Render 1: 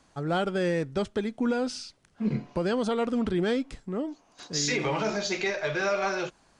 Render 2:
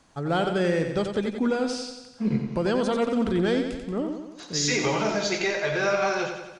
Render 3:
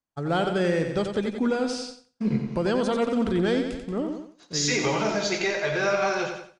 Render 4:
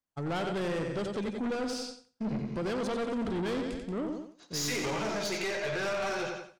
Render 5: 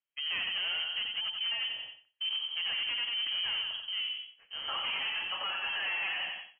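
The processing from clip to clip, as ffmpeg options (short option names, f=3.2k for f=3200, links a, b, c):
-af "aecho=1:1:90|180|270|360|450|540|630:0.447|0.255|0.145|0.0827|0.0472|0.0269|0.0153,volume=2dB"
-af "agate=range=-33dB:threshold=-33dB:ratio=3:detection=peak"
-af "aeval=exprs='(tanh(22.4*val(0)+0.2)-tanh(0.2))/22.4':c=same,volume=-2dB"
-af "aeval=exprs='0.0447*(cos(1*acos(clip(val(0)/0.0447,-1,1)))-cos(1*PI/2))+0.00251*(cos(6*acos(clip(val(0)/0.0447,-1,1)))-cos(6*PI/2))':c=same,lowpass=f=2.8k:t=q:w=0.5098,lowpass=f=2.8k:t=q:w=0.6013,lowpass=f=2.8k:t=q:w=0.9,lowpass=f=2.8k:t=q:w=2.563,afreqshift=-3300,volume=-2dB"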